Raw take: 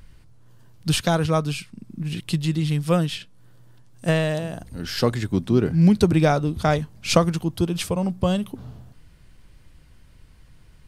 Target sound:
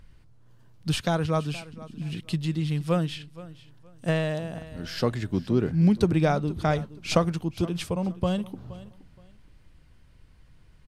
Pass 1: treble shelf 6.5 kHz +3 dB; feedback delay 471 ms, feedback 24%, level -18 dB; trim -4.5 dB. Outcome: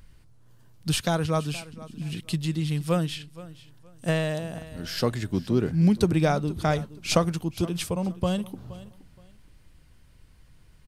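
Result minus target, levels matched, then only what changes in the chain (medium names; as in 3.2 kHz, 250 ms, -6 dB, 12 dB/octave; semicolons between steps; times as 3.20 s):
8 kHz band +5.5 dB
change: treble shelf 6.5 kHz -7.5 dB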